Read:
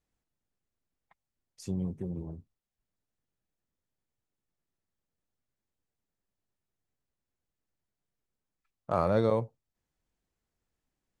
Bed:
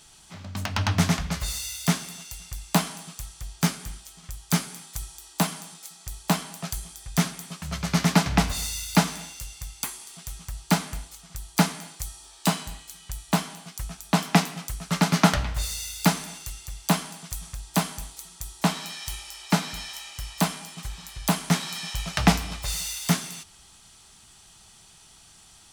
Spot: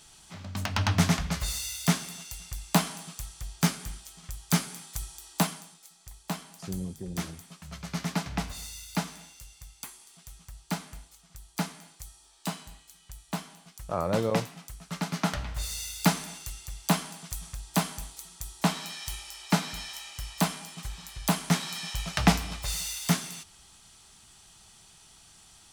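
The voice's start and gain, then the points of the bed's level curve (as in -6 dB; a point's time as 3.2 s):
5.00 s, -2.0 dB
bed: 5.4 s -1.5 dB
5.79 s -10.5 dB
15.2 s -10.5 dB
15.79 s -2.5 dB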